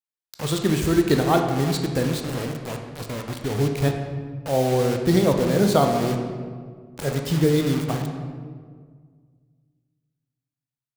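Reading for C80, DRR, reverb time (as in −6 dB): 7.0 dB, 3.5 dB, 1.8 s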